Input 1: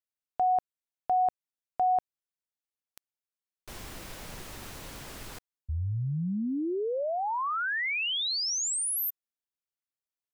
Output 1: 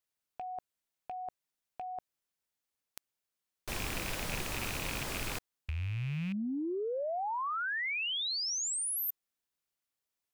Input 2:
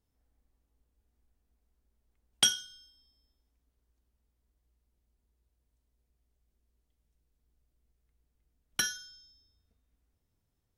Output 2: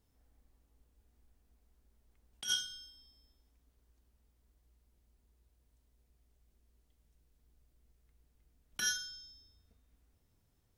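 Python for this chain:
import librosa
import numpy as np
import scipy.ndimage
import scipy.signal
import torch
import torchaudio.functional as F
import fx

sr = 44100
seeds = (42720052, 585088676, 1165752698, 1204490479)

y = fx.rattle_buzz(x, sr, strikes_db=-46.0, level_db=-31.0)
y = fx.over_compress(y, sr, threshold_db=-35.0, ratio=-1.0)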